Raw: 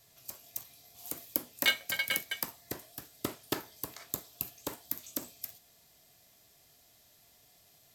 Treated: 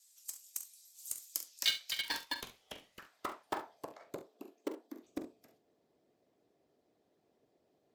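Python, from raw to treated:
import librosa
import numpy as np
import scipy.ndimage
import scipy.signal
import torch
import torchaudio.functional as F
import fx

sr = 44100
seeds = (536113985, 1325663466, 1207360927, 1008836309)

p1 = fx.hpss(x, sr, part='harmonic', gain_db=-11)
p2 = fx.filter_sweep_bandpass(p1, sr, from_hz=7900.0, to_hz=370.0, start_s=1.19, end_s=4.45, q=1.9)
p3 = (np.mod(10.0 ** (36.5 / 20.0) * p2 + 1.0, 2.0) - 1.0) / 10.0 ** (36.5 / 20.0)
p4 = p2 + (p3 * 10.0 ** (-8.0 / 20.0))
p5 = fx.ring_mod(p4, sr, carrier_hz=1300.0, at=(2.05, 2.99))
p6 = fx.brickwall_highpass(p5, sr, low_hz=200.0, at=(4.21, 5.03))
p7 = p6 + fx.room_early_taps(p6, sr, ms=(44, 69), db=(-11.5, -15.0), dry=0)
y = p7 * 10.0 ** (4.5 / 20.0)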